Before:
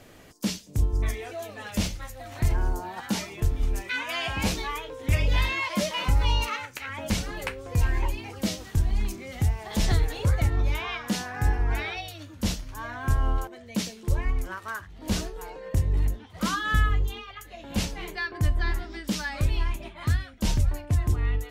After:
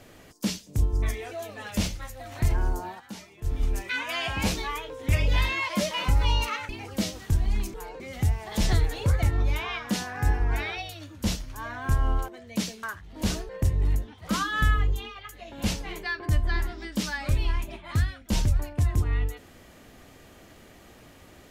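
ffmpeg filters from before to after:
-filter_complex "[0:a]asplit=8[a][b][c][d][e][f][g][h];[a]atrim=end=3,asetpts=PTS-STARTPTS,afade=t=out:st=2.87:d=0.13:c=qsin:silence=0.237137[i];[b]atrim=start=3:end=3.43,asetpts=PTS-STARTPTS,volume=-12.5dB[j];[c]atrim=start=3.43:end=6.692,asetpts=PTS-STARTPTS,afade=t=in:d=0.13:c=qsin:silence=0.237137[k];[d]atrim=start=8.138:end=9.192[l];[e]atrim=start=15.348:end=15.612[m];[f]atrim=start=9.188:end=14.022[n];[g]atrim=start=14.688:end=15.352[o];[h]atrim=start=15.608[p];[i][j][k]concat=n=3:v=0:a=1[q];[q][l]acrossfade=d=0.004:c1=hsin:c2=hsin[r];[r][m]acrossfade=d=0.004:c1=hsin:c2=hsin[s];[s][n]acrossfade=d=0.004:c1=hsin:c2=hsin[t];[t][o]acrossfade=d=0.004:c1=hsin:c2=hsin[u];[u][p]acrossfade=d=0.004:c1=hsin:c2=hsin"

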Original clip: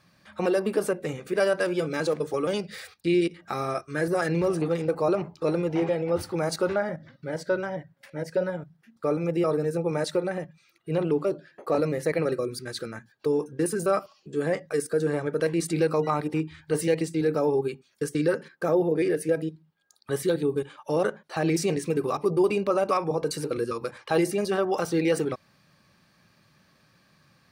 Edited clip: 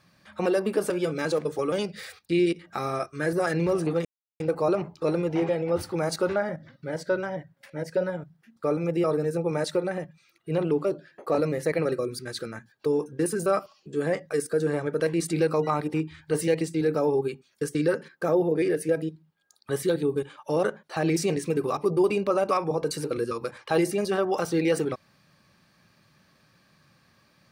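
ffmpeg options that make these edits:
-filter_complex "[0:a]asplit=3[a][b][c];[a]atrim=end=0.902[d];[b]atrim=start=1.648:end=4.8,asetpts=PTS-STARTPTS,afade=t=out:st=3.148:d=0.004:c=hsin,apad=pad_dur=0.35[e];[c]atrim=start=4.8,asetpts=PTS-STARTPTS,afade=t=in:d=0.004:c=hsin[f];[e][f]concat=n=2:v=0:a=1[g];[d][g]acrossfade=d=0.004:c1=hsin:c2=hsin"

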